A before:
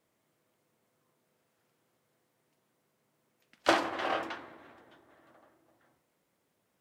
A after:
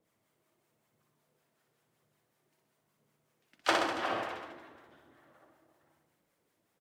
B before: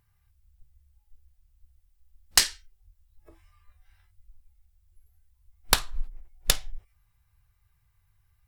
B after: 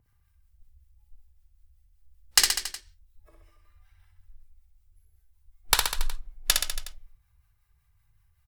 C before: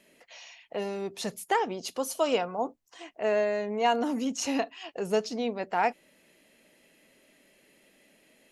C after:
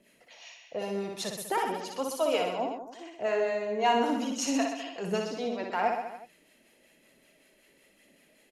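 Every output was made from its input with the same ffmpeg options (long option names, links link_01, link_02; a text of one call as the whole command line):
ffmpeg -i in.wav -filter_complex "[0:a]aphaser=in_gain=1:out_gain=1:delay=3.4:decay=0.32:speed=0.99:type=triangular,acrossover=split=690[link_01][link_02];[link_01]aeval=exprs='val(0)*(1-0.7/2+0.7/2*cos(2*PI*5.3*n/s))':channel_layout=same[link_03];[link_02]aeval=exprs='val(0)*(1-0.7/2-0.7/2*cos(2*PI*5.3*n/s))':channel_layout=same[link_04];[link_03][link_04]amix=inputs=2:normalize=0,aecho=1:1:60|126|198.6|278.5|366.3:0.631|0.398|0.251|0.158|0.1" out.wav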